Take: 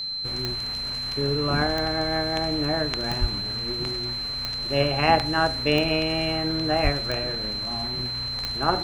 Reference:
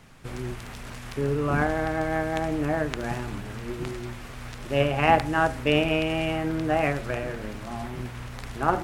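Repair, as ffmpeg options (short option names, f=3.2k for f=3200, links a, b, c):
-filter_complex "[0:a]adeclick=t=4,bandreject=f=4.1k:w=30,asplit=3[a][b][c];[a]afade=t=out:st=3.2:d=0.02[d];[b]highpass=f=140:w=0.5412,highpass=f=140:w=1.3066,afade=t=in:st=3.2:d=0.02,afade=t=out:st=3.32:d=0.02[e];[c]afade=t=in:st=3.32:d=0.02[f];[d][e][f]amix=inputs=3:normalize=0,asplit=3[g][h][i];[g]afade=t=out:st=6.83:d=0.02[j];[h]highpass=f=140:w=0.5412,highpass=f=140:w=1.3066,afade=t=in:st=6.83:d=0.02,afade=t=out:st=6.95:d=0.02[k];[i]afade=t=in:st=6.95:d=0.02[l];[j][k][l]amix=inputs=3:normalize=0"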